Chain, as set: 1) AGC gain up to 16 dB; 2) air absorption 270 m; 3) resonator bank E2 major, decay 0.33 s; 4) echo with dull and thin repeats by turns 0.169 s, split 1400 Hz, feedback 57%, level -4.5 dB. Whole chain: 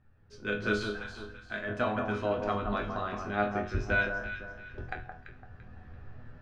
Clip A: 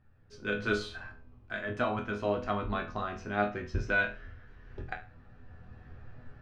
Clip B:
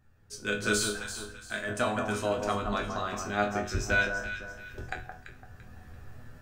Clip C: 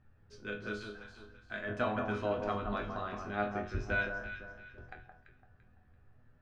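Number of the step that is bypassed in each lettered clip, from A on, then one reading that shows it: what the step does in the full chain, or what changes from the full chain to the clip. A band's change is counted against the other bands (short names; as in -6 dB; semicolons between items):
4, echo-to-direct -6.0 dB to none; 2, 4 kHz band +6.5 dB; 1, loudness change -4.0 LU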